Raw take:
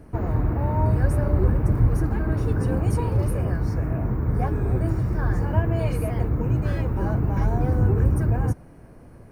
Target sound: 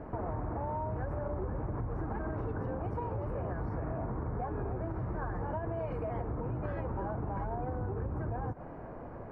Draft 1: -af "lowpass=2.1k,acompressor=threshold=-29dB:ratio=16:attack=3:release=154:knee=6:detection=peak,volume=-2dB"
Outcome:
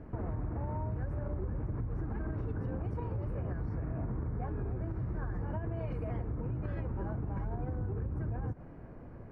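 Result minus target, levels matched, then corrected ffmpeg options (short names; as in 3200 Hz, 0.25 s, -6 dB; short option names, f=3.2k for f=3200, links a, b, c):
1000 Hz band -7.5 dB
-af "lowpass=2.1k,equalizer=f=820:t=o:w=2.2:g=12,acompressor=threshold=-29dB:ratio=16:attack=3:release=154:knee=6:detection=peak,volume=-2dB"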